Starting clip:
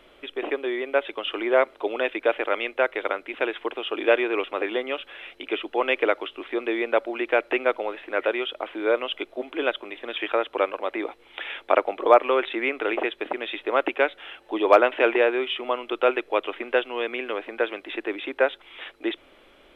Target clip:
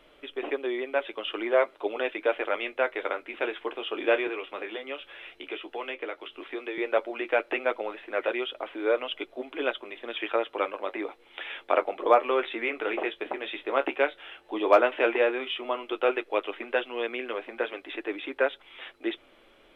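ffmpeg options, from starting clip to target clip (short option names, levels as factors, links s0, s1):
-filter_complex "[0:a]asettb=1/sr,asplit=3[s0][s1][s2];[s0]atrim=end=4.274[s3];[s1]atrim=start=4.27:end=6.78,asetpts=PTS-STARTPTS,afade=t=in:d=0.004:c=qsin,afade=t=out:st=2.506:d=0.004:c=qsin,acrossover=split=310|1700[s4][s5][s6];[s4]acompressor=threshold=0.00631:ratio=4[s7];[s5]acompressor=threshold=0.0251:ratio=4[s8];[s6]acompressor=threshold=0.02:ratio=4[s9];[s7][s8][s9]amix=inputs=3:normalize=0[s10];[s2]atrim=start=6.776[s11];[s3][s10]acrossfade=d=0.004:c1=hsin:c2=qsin[s12];[s12][s11]acrossfade=d=0.004:c1=qsin:c2=hsin,flanger=delay=6.5:depth=8.6:regen=-41:speed=0.11:shape=triangular"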